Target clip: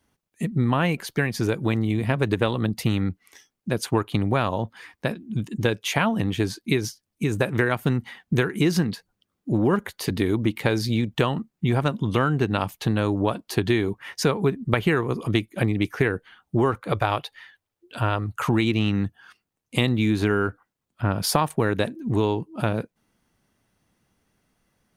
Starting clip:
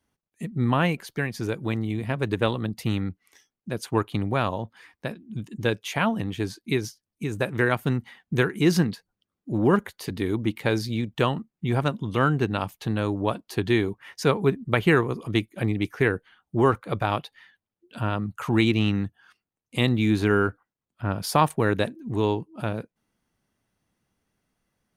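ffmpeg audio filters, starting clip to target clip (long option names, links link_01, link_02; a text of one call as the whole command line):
ffmpeg -i in.wav -filter_complex "[0:a]asettb=1/sr,asplit=3[link_01][link_02][link_03];[link_01]atrim=end=16.924[link_04];[link_02]atrim=start=16.92:end=18.35,asetpts=PTS-STARTPTS,afade=type=in:duration=0.004:curve=qsin,afade=type=out:start_time=1.426:duration=0.004:curve=qsin,equalizer=frequency=200:width_type=o:width=0.76:gain=-11.5[link_05];[link_03]atrim=start=18.346[link_06];[link_04][link_05]acrossfade=duration=0.004:curve1=hsin:curve2=qsin[link_07];[link_07][link_06]acrossfade=duration=0.004:curve1=qsin:curve2=hsin,acompressor=threshold=-24dB:ratio=6,volume=6.5dB" out.wav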